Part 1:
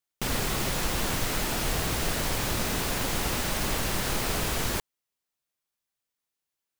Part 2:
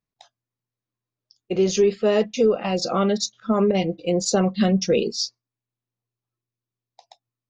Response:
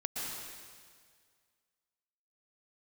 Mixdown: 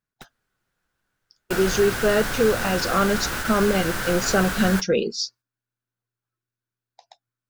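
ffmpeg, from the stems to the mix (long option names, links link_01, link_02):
-filter_complex "[0:a]flanger=delay=6.8:depth=7.5:regen=-48:speed=0.45:shape=sinusoidal,volume=3dB[link_01];[1:a]volume=-1.5dB,asplit=2[link_02][link_03];[link_03]apad=whole_len=299804[link_04];[link_01][link_04]sidechaingate=range=-50dB:threshold=-47dB:ratio=16:detection=peak[link_05];[link_05][link_02]amix=inputs=2:normalize=0,equalizer=frequency=1500:width=3.5:gain=13.5"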